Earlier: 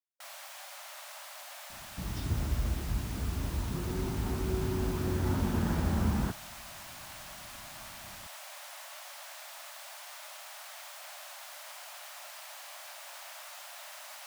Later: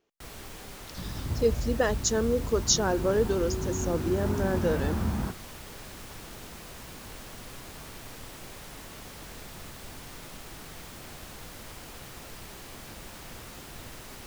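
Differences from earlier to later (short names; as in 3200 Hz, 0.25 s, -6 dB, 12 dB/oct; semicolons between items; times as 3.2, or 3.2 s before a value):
speech: unmuted; first sound: remove brick-wall FIR high-pass 550 Hz; second sound: entry -1.00 s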